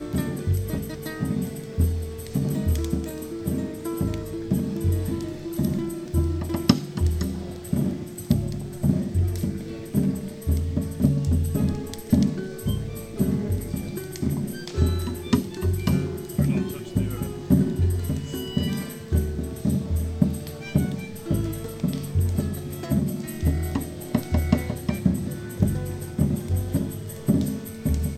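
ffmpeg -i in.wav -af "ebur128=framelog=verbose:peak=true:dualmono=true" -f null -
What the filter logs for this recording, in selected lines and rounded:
Integrated loudness:
  I:         -23.3 LUFS
  Threshold: -33.3 LUFS
Loudness range:
  LRA:         2.3 LU
  Threshold: -43.2 LUFS
  LRA low:   -24.4 LUFS
  LRA high:  -22.0 LUFS
True peak:
  Peak:       -1.3 dBFS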